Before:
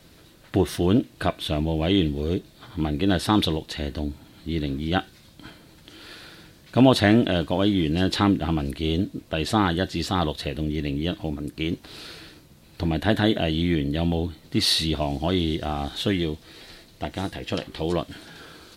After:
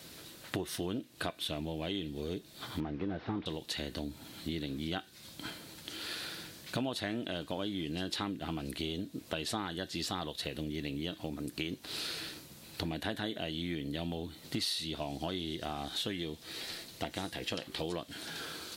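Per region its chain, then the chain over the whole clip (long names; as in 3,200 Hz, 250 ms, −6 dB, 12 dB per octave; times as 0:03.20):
0:02.80–0:03.46: linear delta modulator 32 kbit/s, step −38 dBFS + low-pass filter 1,800 Hz
whole clip: high-pass filter 150 Hz 6 dB per octave; high-shelf EQ 3,100 Hz +7.5 dB; downward compressor 6 to 1, threshold −34 dBFS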